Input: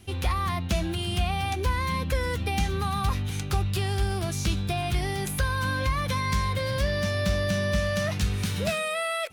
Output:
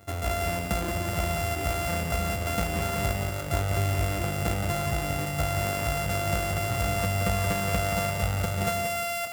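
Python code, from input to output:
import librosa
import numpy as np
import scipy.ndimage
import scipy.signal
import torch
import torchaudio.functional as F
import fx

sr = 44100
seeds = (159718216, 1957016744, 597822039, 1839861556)

p1 = np.r_[np.sort(x[:len(x) // 64 * 64].reshape(-1, 64), axis=1).ravel(), x[len(x) // 64 * 64:]]
p2 = scipy.signal.sosfilt(scipy.signal.butter(2, 68.0, 'highpass', fs=sr, output='sos'), p1)
p3 = fx.quant_float(p2, sr, bits=2)
p4 = fx.peak_eq(p3, sr, hz=4600.0, db=-5.5, octaves=0.94)
y = p4 + fx.echo_feedback(p4, sr, ms=176, feedback_pct=37, wet_db=-6, dry=0)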